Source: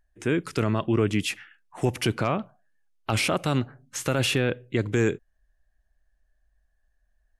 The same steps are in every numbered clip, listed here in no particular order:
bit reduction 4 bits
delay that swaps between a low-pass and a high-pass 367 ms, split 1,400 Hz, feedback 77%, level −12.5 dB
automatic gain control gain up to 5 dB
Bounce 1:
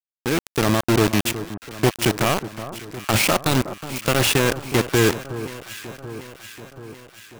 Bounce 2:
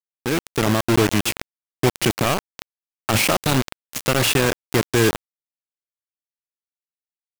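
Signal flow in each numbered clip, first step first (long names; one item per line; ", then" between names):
bit reduction, then automatic gain control, then delay that swaps between a low-pass and a high-pass
delay that swaps between a low-pass and a high-pass, then bit reduction, then automatic gain control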